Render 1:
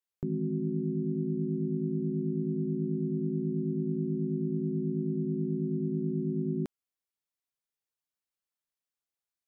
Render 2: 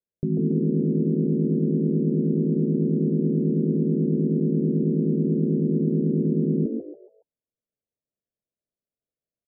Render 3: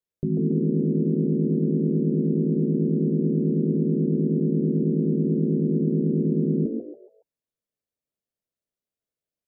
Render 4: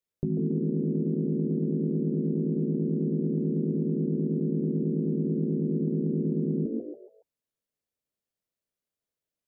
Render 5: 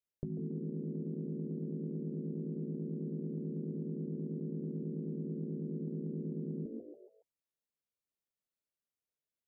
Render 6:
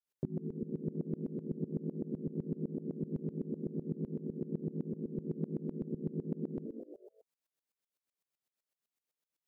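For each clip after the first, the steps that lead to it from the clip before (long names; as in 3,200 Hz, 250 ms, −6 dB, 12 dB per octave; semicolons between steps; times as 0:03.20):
Chebyshev low-pass with heavy ripple 640 Hz, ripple 3 dB; echo with shifted repeats 140 ms, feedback 30%, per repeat +70 Hz, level −5 dB; level +8.5 dB
mains-hum notches 60/120/180/240 Hz
downward compressor 2.5 to 1, threshold −26 dBFS, peak gain reduction 6 dB
dynamic equaliser 290 Hz, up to −5 dB, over −38 dBFS, Q 0.74; level −8 dB
high-pass filter 150 Hz 12 dB per octave; tremolo with a ramp in dB swelling 7.9 Hz, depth 22 dB; level +8.5 dB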